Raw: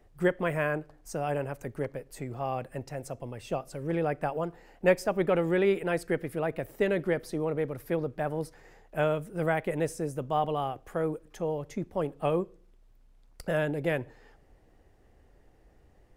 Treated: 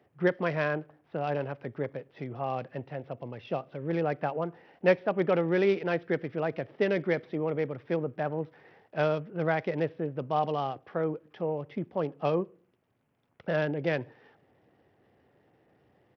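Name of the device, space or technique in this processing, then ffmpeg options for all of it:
Bluetooth headset: -filter_complex "[0:a]asplit=3[link_01][link_02][link_03];[link_01]afade=type=out:start_time=6.93:duration=0.02[link_04];[link_02]adynamicequalizer=threshold=0.00158:dfrequency=2200:dqfactor=6.1:tfrequency=2200:tqfactor=6.1:attack=5:release=100:ratio=0.375:range=3:mode=boostabove:tftype=bell,afade=type=in:start_time=6.93:duration=0.02,afade=type=out:start_time=7.65:duration=0.02[link_05];[link_03]afade=type=in:start_time=7.65:duration=0.02[link_06];[link_04][link_05][link_06]amix=inputs=3:normalize=0,highpass=frequency=110:width=0.5412,highpass=frequency=110:width=1.3066,aresample=8000,aresample=44100" -ar 44100 -c:a sbc -b:a 64k

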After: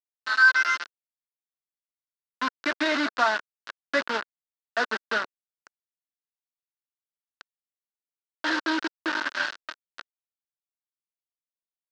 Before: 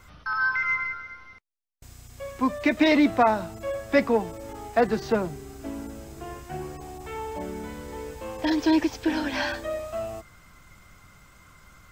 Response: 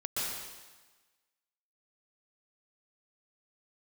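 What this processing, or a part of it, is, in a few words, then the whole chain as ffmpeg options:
hand-held game console: -af "acrusher=bits=3:mix=0:aa=0.000001,highpass=480,equalizer=frequency=480:width_type=q:width=4:gain=-9,equalizer=frequency=770:width_type=q:width=4:gain=-9,equalizer=frequency=1500:width_type=q:width=4:gain=9,equalizer=frequency=2300:width_type=q:width=4:gain=-7,equalizer=frequency=3300:width_type=q:width=4:gain=-3,lowpass=frequency=4600:width=0.5412,lowpass=frequency=4600:width=1.3066"

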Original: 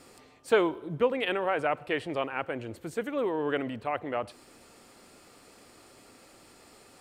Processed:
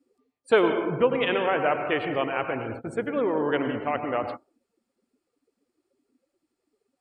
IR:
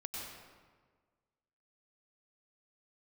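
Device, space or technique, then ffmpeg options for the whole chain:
keyed gated reverb: -filter_complex "[0:a]asplit=3[link_01][link_02][link_03];[1:a]atrim=start_sample=2205[link_04];[link_02][link_04]afir=irnorm=-1:irlink=0[link_05];[link_03]apad=whole_len=308959[link_06];[link_05][link_06]sidechaingate=range=-33dB:threshold=-44dB:ratio=16:detection=peak,volume=1.5dB[link_07];[link_01][link_07]amix=inputs=2:normalize=0,afftdn=noise_reduction=28:noise_floor=-42,volume=-1dB"

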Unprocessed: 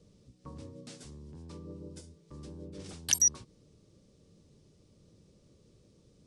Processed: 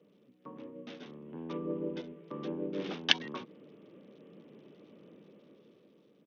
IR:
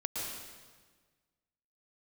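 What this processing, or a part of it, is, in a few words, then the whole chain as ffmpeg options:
Bluetooth headset: -filter_complex "[0:a]asettb=1/sr,asplit=3[link_01][link_02][link_03];[link_01]atrim=end=1.004[link_04];[link_02]atrim=start=1:end=2.56,asetpts=PTS-STARTPTS,afade=type=in:duration=0.004:curve=qsin,afade=type=out:start_time=1.556:duration=0.004:curve=qsin,asplit=2[link_05][link_06];[link_06]adelay=12,volume=-9dB[link_07];[link_05][link_07]amix=inputs=2:normalize=0,atrim=end_sample=68796[link_08];[link_03]atrim=start=2.556[link_09];[link_04][link_08]acrossfade=duration=0.004:curve1=hsin:curve2=qsin[link_10];[link_10][link_09]acrossfade=duration=0.004:curve1=qsin:curve2=hsin,highpass=frequency=210:width=0.5412,highpass=frequency=210:width=1.3066,dynaudnorm=framelen=420:gausssize=7:maxgain=14dB,aresample=8000,aresample=44100,volume=1.5dB" -ar 48000 -c:a sbc -b:a 64k

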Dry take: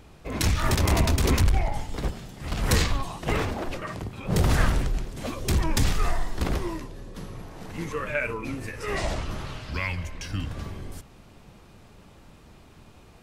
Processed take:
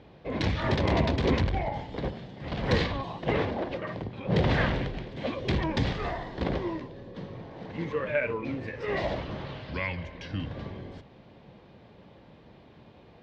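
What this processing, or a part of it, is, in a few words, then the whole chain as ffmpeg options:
guitar cabinet: -filter_complex "[0:a]asettb=1/sr,asplit=3[link_01][link_02][link_03];[link_01]atrim=end=4.314[link_04];[link_02]atrim=start=4.31:end=5.64,asetpts=PTS-STARTPTS,afade=type=in:duration=0.004:curve=qsin,afade=type=out:start_time=1.326:duration=0.004:curve=qsin,equalizer=frequency=2500:width_type=o:width=1.4:gain=4.5[link_05];[link_03]atrim=start=5.636[link_06];[link_04][link_05]acrossfade=duration=0.004:curve1=hsin:curve2=qsin[link_07];[link_07][link_06]acrossfade=duration=0.004:curve1=qsin:curve2=hsin,highpass=82,equalizer=frequency=83:width_type=q:width=4:gain=-5,equalizer=frequency=530:width_type=q:width=4:gain=5,equalizer=frequency=1300:width_type=q:width=4:gain=-8,equalizer=frequency=2600:width_type=q:width=4:gain=-5,lowpass=frequency=3800:width=0.5412,lowpass=frequency=3800:width=1.3066"

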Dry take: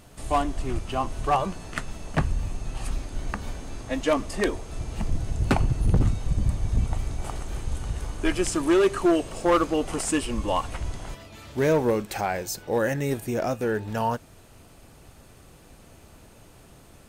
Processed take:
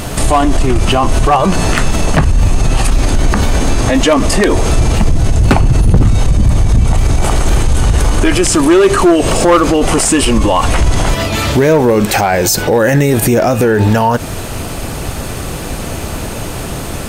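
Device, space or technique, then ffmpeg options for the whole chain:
loud club master: -af "acompressor=threshold=-27dB:ratio=2,asoftclip=type=hard:threshold=-19.5dB,alimiter=level_in=31.5dB:limit=-1dB:release=50:level=0:latency=1,volume=-2dB"

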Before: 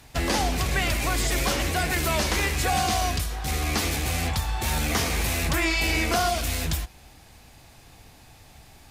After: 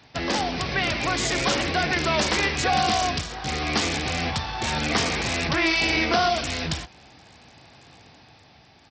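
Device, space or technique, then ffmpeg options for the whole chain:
Bluetooth headset: -af "highpass=120,dynaudnorm=framelen=120:gausssize=13:maxgain=3dB,aresample=16000,aresample=44100" -ar 44100 -c:a sbc -b:a 64k

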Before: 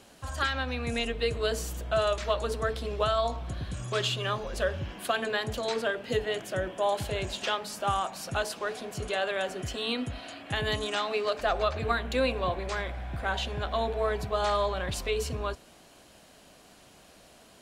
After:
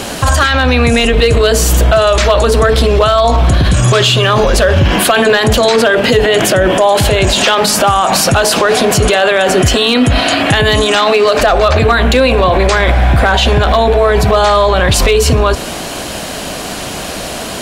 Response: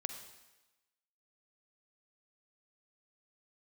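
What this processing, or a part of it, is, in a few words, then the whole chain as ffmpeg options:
loud club master: -af "acompressor=threshold=-30dB:ratio=2.5,asoftclip=type=hard:threshold=-24dB,alimiter=level_in=34.5dB:limit=-1dB:release=50:level=0:latency=1,volume=-1dB"

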